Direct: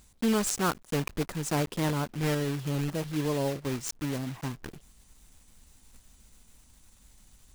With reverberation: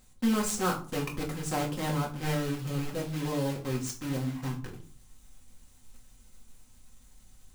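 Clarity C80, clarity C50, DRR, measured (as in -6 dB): 17.0 dB, 11.5 dB, -1.5 dB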